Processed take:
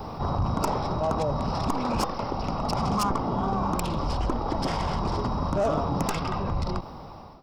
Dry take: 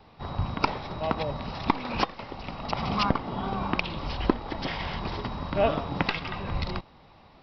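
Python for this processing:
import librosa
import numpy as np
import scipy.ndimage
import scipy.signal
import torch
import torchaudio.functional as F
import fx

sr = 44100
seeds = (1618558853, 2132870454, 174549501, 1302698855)

y = fx.fade_out_tail(x, sr, length_s=1.75)
y = 10.0 ** (-23.5 / 20.0) * np.tanh(y / 10.0 ** (-23.5 / 20.0))
y = fx.band_shelf(y, sr, hz=2700.0, db=-13.0, octaves=1.7)
y = fx.rider(y, sr, range_db=10, speed_s=2.0)
y = fx.high_shelf(y, sr, hz=4900.0, db=8.5)
y = fx.env_flatten(y, sr, amount_pct=50)
y = y * librosa.db_to_amplitude(2.5)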